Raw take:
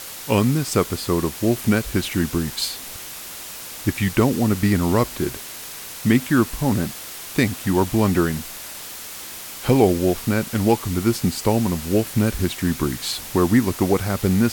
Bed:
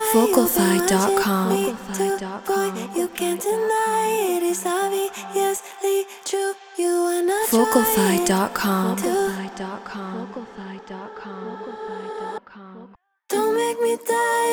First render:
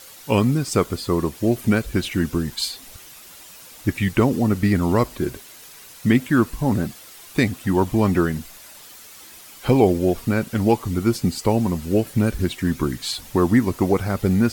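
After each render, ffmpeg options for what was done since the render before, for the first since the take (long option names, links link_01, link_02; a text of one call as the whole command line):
ffmpeg -i in.wav -af "afftdn=noise_reduction=10:noise_floor=-35" out.wav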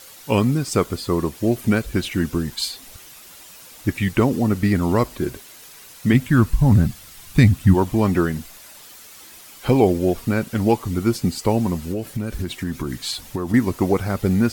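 ffmpeg -i in.wav -filter_complex "[0:a]asplit=3[link_01][link_02][link_03];[link_01]afade=type=out:start_time=6.13:duration=0.02[link_04];[link_02]asubboost=boost=11:cutoff=150,afade=type=in:start_time=6.13:duration=0.02,afade=type=out:start_time=7.73:duration=0.02[link_05];[link_03]afade=type=in:start_time=7.73:duration=0.02[link_06];[link_04][link_05][link_06]amix=inputs=3:normalize=0,asettb=1/sr,asplit=3[link_07][link_08][link_09];[link_07]atrim=end=8.394[link_10];[link_08]atrim=start=8.39:end=9.66,asetpts=PTS-STARTPTS,afade=type=in:duration=0.004:curve=qsin,afade=type=out:start_time=1.266:duration=0.004:curve=qsin,acrusher=bits=5:mode=log:mix=0:aa=0.000001[link_11];[link_09]atrim=start=9.656[link_12];[link_10][link_11]acrossfade=duration=0.004:curve1=hsin:curve2=qsin[link_13];[link_13][link_12]acrossfade=duration=0.004:curve1=qsin:curve2=hsin,asettb=1/sr,asplit=3[link_14][link_15][link_16];[link_14]atrim=end=11.904[link_17];[link_15]atrim=start=11.9:end=13.54,asetpts=PTS-STARTPTS,afade=type=in:duration=0.004:curve=qsin,afade=type=out:start_time=1.636:duration=0.004:curve=qsin,acompressor=threshold=-20dB:ratio=10:attack=3.2:release=140:knee=1:detection=peak[link_18];[link_16]atrim=start=13.536[link_19];[link_17][link_18]acrossfade=duration=0.004:curve1=hsin:curve2=qsin[link_20];[link_20][link_19]acrossfade=duration=0.004:curve1=qsin:curve2=hsin" out.wav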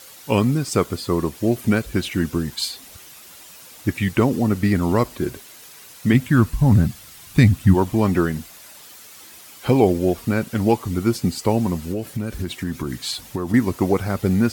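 ffmpeg -i in.wav -af "highpass=55" out.wav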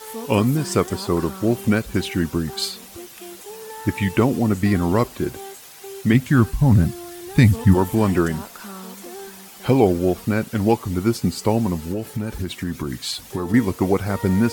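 ffmpeg -i in.wav -i bed.wav -filter_complex "[1:a]volume=-16dB[link_01];[0:a][link_01]amix=inputs=2:normalize=0" out.wav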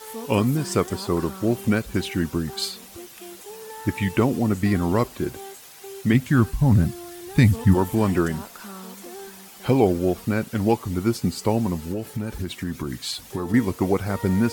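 ffmpeg -i in.wav -af "volume=-2.5dB" out.wav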